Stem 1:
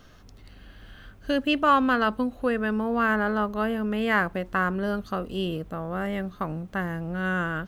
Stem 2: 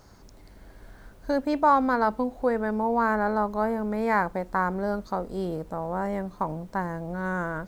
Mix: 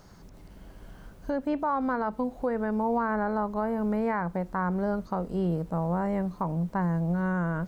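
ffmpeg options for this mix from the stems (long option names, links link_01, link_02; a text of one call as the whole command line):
ffmpeg -i stem1.wav -i stem2.wav -filter_complex "[0:a]volume=-13dB[link_01];[1:a]equalizer=frequency=170:width_type=o:width=0.25:gain=11,volume=-0.5dB,asplit=2[link_02][link_03];[link_03]apad=whole_len=338490[link_04];[link_01][link_04]sidechaincompress=threshold=-30dB:ratio=8:attack=16:release=390[link_05];[link_05][link_02]amix=inputs=2:normalize=0,acrossover=split=2800[link_06][link_07];[link_07]acompressor=threshold=-58dB:ratio=4:attack=1:release=60[link_08];[link_06][link_08]amix=inputs=2:normalize=0,alimiter=limit=-19.5dB:level=0:latency=1:release=247" out.wav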